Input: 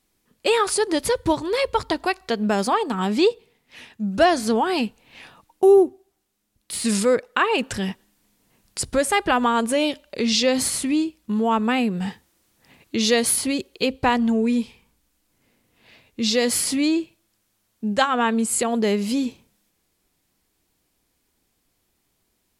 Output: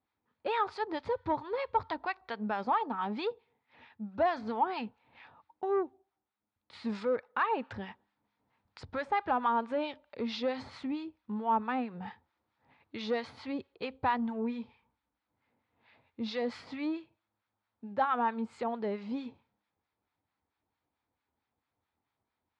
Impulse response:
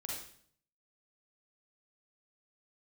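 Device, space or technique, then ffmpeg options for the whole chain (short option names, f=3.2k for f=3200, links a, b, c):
guitar amplifier with harmonic tremolo: -filter_complex "[0:a]acrossover=split=930[a][b];[a]aeval=exprs='val(0)*(1-0.7/2+0.7/2*cos(2*PI*4.5*n/s))':c=same[c];[b]aeval=exprs='val(0)*(1-0.7/2-0.7/2*cos(2*PI*4.5*n/s))':c=same[d];[c][d]amix=inputs=2:normalize=0,asoftclip=type=tanh:threshold=-13dB,highpass=87,equalizer=f=89:t=q:w=4:g=6,equalizer=f=180:t=q:w=4:g=-7,equalizer=f=360:t=q:w=4:g=-5,equalizer=f=880:t=q:w=4:g=9,equalizer=f=1.3k:t=q:w=4:g=4,equalizer=f=2.9k:t=q:w=4:g=-7,lowpass=f=3.5k:w=0.5412,lowpass=f=3.5k:w=1.3066,volume=-8.5dB"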